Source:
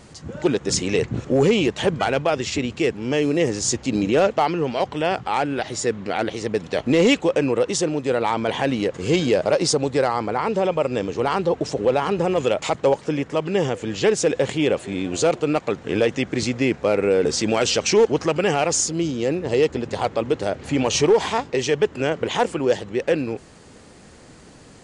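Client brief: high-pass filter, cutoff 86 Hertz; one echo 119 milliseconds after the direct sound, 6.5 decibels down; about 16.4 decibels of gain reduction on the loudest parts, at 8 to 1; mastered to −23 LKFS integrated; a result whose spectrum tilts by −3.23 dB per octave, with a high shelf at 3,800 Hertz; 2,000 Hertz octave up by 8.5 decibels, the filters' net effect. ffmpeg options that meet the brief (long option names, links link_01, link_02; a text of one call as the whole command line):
ffmpeg -i in.wav -af "highpass=86,equalizer=frequency=2000:width_type=o:gain=9,highshelf=frequency=3800:gain=6.5,acompressor=threshold=-28dB:ratio=8,aecho=1:1:119:0.473,volume=8dB" out.wav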